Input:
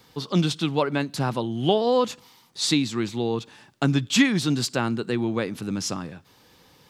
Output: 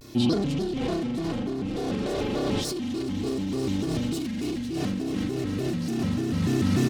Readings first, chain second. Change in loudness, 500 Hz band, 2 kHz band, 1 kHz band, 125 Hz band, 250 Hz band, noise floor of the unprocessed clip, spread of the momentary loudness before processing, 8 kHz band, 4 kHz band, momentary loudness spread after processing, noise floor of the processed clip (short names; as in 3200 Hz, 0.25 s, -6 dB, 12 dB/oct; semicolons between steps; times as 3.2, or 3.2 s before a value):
-3.5 dB, -4.0 dB, -9.0 dB, -8.0 dB, -1.0 dB, -0.5 dB, -57 dBFS, 9 LU, -7.5 dB, -7.0 dB, 5 LU, -31 dBFS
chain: spring tank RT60 2.2 s, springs 35 ms, chirp 55 ms, DRR -7.5 dB; soft clip -22 dBFS, distortion -6 dB; bell 1200 Hz -11.5 dB 2.4 oct; comb 3.2 ms, depth 73%; on a send: swelling echo 0.106 s, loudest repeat 8, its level -13 dB; on the sum: negative-ratio compressor -32 dBFS, ratio -1; HPF 130 Hz 6 dB/oct; low shelf 350 Hz +10.5 dB; shaped vibrato square 3.4 Hz, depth 250 cents